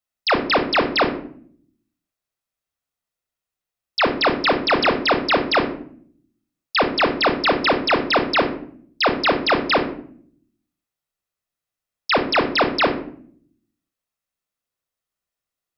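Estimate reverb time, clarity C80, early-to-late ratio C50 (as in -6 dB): 0.60 s, 14.0 dB, 9.5 dB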